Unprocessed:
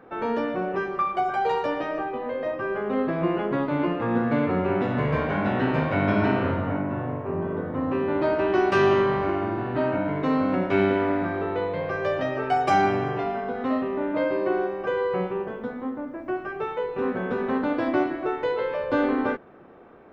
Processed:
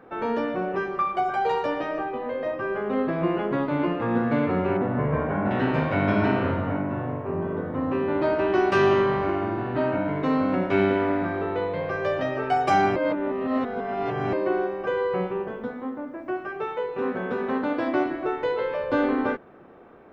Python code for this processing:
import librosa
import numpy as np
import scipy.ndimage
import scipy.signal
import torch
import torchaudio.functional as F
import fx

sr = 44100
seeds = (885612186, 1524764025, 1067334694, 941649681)

y = fx.lowpass(x, sr, hz=1500.0, slope=12, at=(4.77, 5.51))
y = fx.low_shelf(y, sr, hz=120.0, db=-8.5, at=(15.71, 18.06))
y = fx.edit(y, sr, fx.reverse_span(start_s=12.96, length_s=1.37), tone=tone)